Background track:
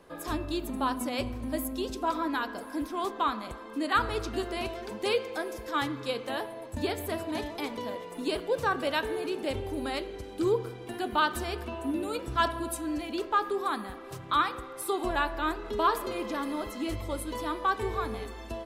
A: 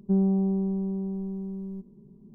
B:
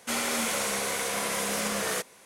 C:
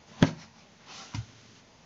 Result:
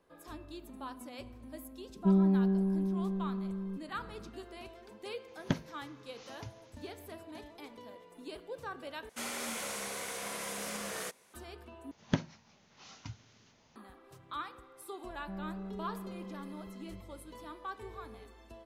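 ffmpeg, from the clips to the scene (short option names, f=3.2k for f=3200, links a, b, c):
-filter_complex "[1:a]asplit=2[a][b];[3:a]asplit=2[c][d];[0:a]volume=-14.5dB[e];[b]asoftclip=type=tanh:threshold=-26.5dB[f];[e]asplit=3[g][h][i];[g]atrim=end=9.094[j];[2:a]atrim=end=2.25,asetpts=PTS-STARTPTS,volume=-10dB[k];[h]atrim=start=11.336:end=11.914[l];[d]atrim=end=1.85,asetpts=PTS-STARTPTS,volume=-8.5dB[m];[i]atrim=start=13.756[n];[a]atrim=end=2.34,asetpts=PTS-STARTPTS,volume=-2.5dB,afade=t=in:d=0.004:c=hsin,afade=t=out:st=2.336:d=0.004:c=hsin,adelay=1960[o];[c]atrim=end=1.85,asetpts=PTS-STARTPTS,volume=-10dB,afade=t=in:d=0.004:c=hsin,afade=t=out:st=1.846:d=0.004:c=hsin,adelay=5280[p];[f]atrim=end=2.34,asetpts=PTS-STARTPTS,volume=-13dB,afade=t=in:d=0.004:c=hsin,afade=t=out:st=2.336:d=0.004:c=hsin,adelay=15190[q];[j][k]acrossfade=d=0.004:c1=hsin:c2=hsin[r];[r][l]acrossfade=d=0.004:c1=hsin:c2=hsin[s];[s][m]acrossfade=d=0.004:c1=hsin:c2=hsin[t];[t][n]acrossfade=d=0.004:c1=hsin:c2=hsin[u];[u][o][p][q]amix=inputs=4:normalize=0"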